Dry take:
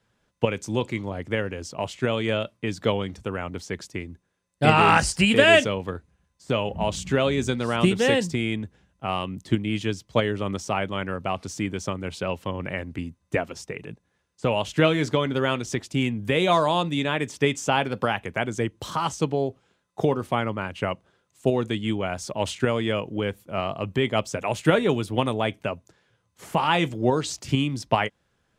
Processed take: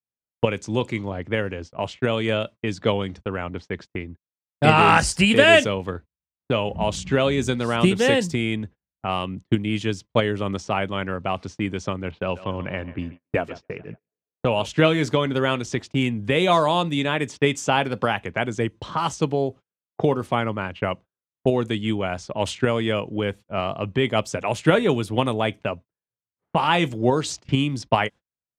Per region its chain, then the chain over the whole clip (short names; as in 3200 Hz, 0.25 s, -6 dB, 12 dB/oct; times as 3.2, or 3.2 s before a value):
12.11–14.66 low-pass opened by the level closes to 1300 Hz, open at -23 dBFS + dynamic EQ 2000 Hz, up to -6 dB, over -50 dBFS, Q 5.7 + thinning echo 0.141 s, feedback 54%, high-pass 220 Hz, level -15.5 dB
whole clip: low-pass opened by the level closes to 1000 Hz, open at -21.5 dBFS; gate -39 dBFS, range -35 dB; gain +2 dB